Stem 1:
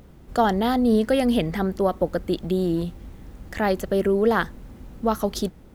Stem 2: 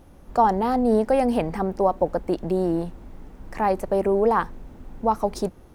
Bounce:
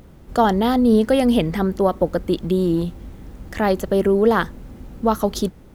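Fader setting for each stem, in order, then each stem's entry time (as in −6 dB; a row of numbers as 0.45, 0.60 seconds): +2.5, −7.5 decibels; 0.00, 0.00 seconds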